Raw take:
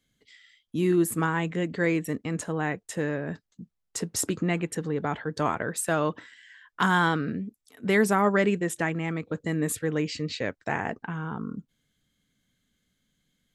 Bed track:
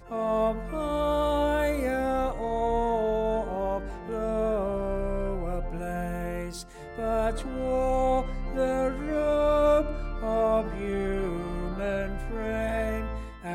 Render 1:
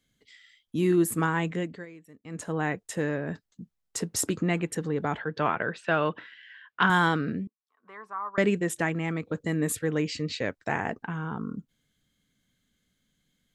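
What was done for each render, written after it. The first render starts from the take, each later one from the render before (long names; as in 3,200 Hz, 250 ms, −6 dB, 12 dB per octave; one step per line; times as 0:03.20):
0:01.52–0:02.55: duck −22 dB, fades 0.34 s
0:05.19–0:06.90: loudspeaker in its box 120–4,200 Hz, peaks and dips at 270 Hz −5 dB, 1,500 Hz +4 dB, 2,700 Hz +6 dB
0:07.47–0:08.38: resonant band-pass 1,100 Hz, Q 10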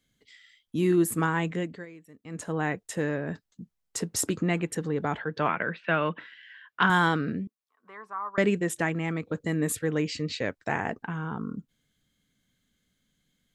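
0:05.48–0:06.20: loudspeaker in its box 150–3,700 Hz, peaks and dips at 170 Hz +5 dB, 410 Hz −4 dB, 750 Hz −4 dB, 2,200 Hz +6 dB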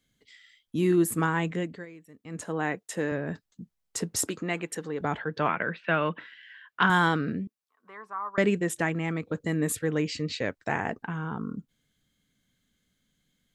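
0:02.45–0:03.12: high-pass filter 180 Hz
0:04.27–0:05.01: high-pass filter 430 Hz 6 dB per octave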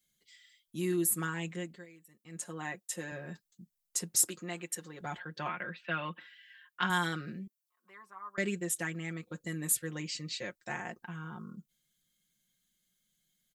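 first-order pre-emphasis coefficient 0.8
comb filter 5.6 ms, depth 82%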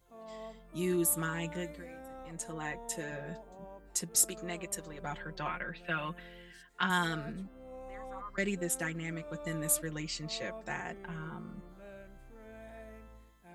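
mix in bed track −21 dB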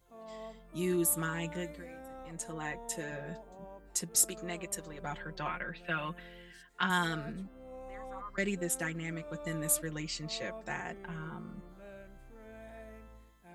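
no processing that can be heard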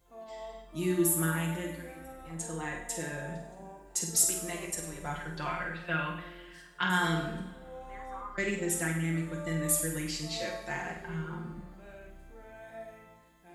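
flutter between parallel walls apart 8.4 metres, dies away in 0.35 s
coupled-rooms reverb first 0.74 s, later 2.9 s, from −20 dB, DRR 2.5 dB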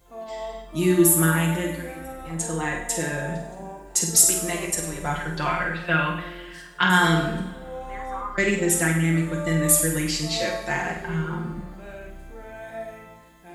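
level +10 dB
brickwall limiter −2 dBFS, peak gain reduction 2 dB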